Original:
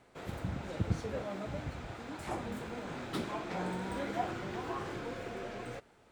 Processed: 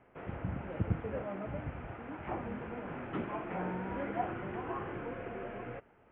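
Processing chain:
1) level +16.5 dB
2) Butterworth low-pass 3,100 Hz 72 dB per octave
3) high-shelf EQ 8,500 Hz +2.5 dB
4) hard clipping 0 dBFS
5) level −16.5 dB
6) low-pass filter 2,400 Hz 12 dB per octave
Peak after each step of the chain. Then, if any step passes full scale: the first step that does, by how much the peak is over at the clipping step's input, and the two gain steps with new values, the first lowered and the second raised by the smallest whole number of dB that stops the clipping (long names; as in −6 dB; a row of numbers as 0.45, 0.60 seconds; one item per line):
−2.0, −2.0, −2.0, −2.0, −18.5, −18.5 dBFS
no step passes full scale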